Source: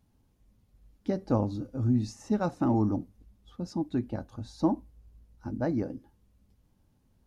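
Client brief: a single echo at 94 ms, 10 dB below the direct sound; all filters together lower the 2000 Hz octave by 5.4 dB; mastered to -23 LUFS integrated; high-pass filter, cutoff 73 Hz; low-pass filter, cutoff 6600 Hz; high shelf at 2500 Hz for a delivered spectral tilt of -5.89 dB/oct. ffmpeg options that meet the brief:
-af "highpass=73,lowpass=6.6k,equalizer=f=2k:t=o:g=-6.5,highshelf=f=2.5k:g=-4,aecho=1:1:94:0.316,volume=8dB"

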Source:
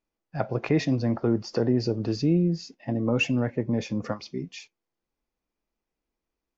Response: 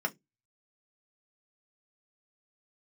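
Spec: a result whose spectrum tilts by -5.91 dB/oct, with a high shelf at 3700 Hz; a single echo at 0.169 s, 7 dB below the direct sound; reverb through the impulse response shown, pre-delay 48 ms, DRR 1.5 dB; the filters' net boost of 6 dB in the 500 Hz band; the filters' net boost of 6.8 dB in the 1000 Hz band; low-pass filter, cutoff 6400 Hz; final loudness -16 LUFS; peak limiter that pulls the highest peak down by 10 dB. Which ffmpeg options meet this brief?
-filter_complex "[0:a]lowpass=6.4k,equalizer=f=500:t=o:g=6,equalizer=f=1k:t=o:g=6.5,highshelf=f=3.7k:g=6,alimiter=limit=-16dB:level=0:latency=1,aecho=1:1:169:0.447,asplit=2[a][b];[1:a]atrim=start_sample=2205,adelay=48[c];[b][c]afir=irnorm=-1:irlink=0,volume=-7.5dB[d];[a][d]amix=inputs=2:normalize=0,volume=8.5dB"

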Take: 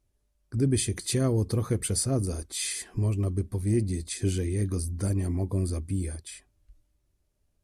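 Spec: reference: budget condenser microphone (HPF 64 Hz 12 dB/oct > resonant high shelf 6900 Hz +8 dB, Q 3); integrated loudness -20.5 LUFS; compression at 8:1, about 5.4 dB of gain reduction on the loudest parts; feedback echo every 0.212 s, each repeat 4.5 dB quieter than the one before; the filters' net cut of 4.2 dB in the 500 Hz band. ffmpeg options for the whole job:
-af "equalizer=f=500:t=o:g=-6,acompressor=threshold=-27dB:ratio=8,highpass=64,highshelf=f=6.9k:t=q:w=3:g=8,aecho=1:1:212|424|636|848|1060|1272|1484|1696|1908:0.596|0.357|0.214|0.129|0.0772|0.0463|0.0278|0.0167|0.01,volume=4dB"

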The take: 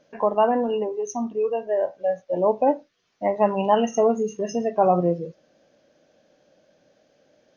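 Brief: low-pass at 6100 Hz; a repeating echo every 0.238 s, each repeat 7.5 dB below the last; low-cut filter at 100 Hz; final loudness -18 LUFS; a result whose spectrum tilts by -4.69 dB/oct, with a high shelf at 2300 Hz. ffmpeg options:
-af "highpass=100,lowpass=6.1k,highshelf=f=2.3k:g=-7.5,aecho=1:1:238|476|714|952|1190:0.422|0.177|0.0744|0.0312|0.0131,volume=5dB"

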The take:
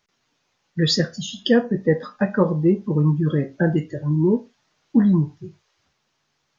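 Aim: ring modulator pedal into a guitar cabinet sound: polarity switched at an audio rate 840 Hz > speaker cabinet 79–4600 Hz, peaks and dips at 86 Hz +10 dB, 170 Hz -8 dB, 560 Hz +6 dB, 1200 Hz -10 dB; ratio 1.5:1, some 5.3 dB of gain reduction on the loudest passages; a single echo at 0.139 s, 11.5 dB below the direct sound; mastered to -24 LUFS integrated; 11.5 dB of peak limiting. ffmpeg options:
-af "acompressor=threshold=-26dB:ratio=1.5,alimiter=limit=-21dB:level=0:latency=1,aecho=1:1:139:0.266,aeval=exprs='val(0)*sgn(sin(2*PI*840*n/s))':c=same,highpass=79,equalizer=f=86:t=q:w=4:g=10,equalizer=f=170:t=q:w=4:g=-8,equalizer=f=560:t=q:w=4:g=6,equalizer=f=1.2k:t=q:w=4:g=-10,lowpass=f=4.6k:w=0.5412,lowpass=f=4.6k:w=1.3066,volume=5.5dB"

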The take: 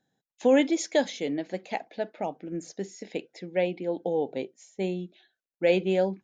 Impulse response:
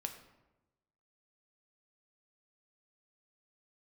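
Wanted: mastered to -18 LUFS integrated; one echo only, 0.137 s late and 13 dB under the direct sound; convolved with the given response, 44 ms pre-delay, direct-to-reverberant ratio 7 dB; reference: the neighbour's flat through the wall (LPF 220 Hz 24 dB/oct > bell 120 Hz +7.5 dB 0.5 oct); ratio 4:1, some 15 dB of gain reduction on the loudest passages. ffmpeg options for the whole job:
-filter_complex "[0:a]acompressor=threshold=-35dB:ratio=4,aecho=1:1:137:0.224,asplit=2[a][b];[1:a]atrim=start_sample=2205,adelay=44[c];[b][c]afir=irnorm=-1:irlink=0,volume=-5.5dB[d];[a][d]amix=inputs=2:normalize=0,lowpass=f=220:w=0.5412,lowpass=f=220:w=1.3066,equalizer=f=120:t=o:w=0.5:g=7.5,volume=30dB"

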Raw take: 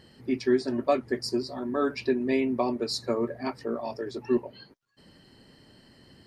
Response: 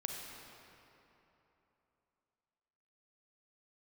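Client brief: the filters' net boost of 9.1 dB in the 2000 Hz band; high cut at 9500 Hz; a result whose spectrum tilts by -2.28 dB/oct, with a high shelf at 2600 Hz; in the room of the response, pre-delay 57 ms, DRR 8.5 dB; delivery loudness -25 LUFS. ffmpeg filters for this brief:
-filter_complex "[0:a]lowpass=9.5k,equalizer=f=2k:t=o:g=7.5,highshelf=f=2.6k:g=8,asplit=2[a][b];[1:a]atrim=start_sample=2205,adelay=57[c];[b][c]afir=irnorm=-1:irlink=0,volume=-9.5dB[d];[a][d]amix=inputs=2:normalize=0,volume=1.5dB"

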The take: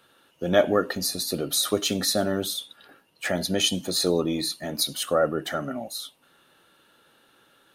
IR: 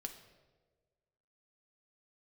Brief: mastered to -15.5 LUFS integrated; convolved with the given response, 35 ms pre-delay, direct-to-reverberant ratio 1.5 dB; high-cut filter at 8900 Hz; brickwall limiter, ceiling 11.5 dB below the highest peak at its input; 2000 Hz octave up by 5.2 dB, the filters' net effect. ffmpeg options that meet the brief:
-filter_complex "[0:a]lowpass=8.9k,equalizer=f=2k:t=o:g=6.5,alimiter=limit=-16dB:level=0:latency=1,asplit=2[a][b];[1:a]atrim=start_sample=2205,adelay=35[c];[b][c]afir=irnorm=-1:irlink=0,volume=1.5dB[d];[a][d]amix=inputs=2:normalize=0,volume=9.5dB"

